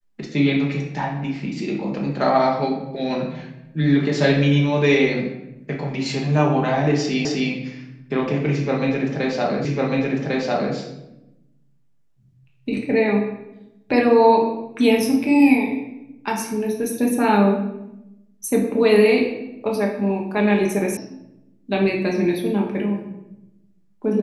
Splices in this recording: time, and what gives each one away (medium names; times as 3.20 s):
7.25 s: repeat of the last 0.26 s
9.65 s: repeat of the last 1.1 s
20.97 s: sound stops dead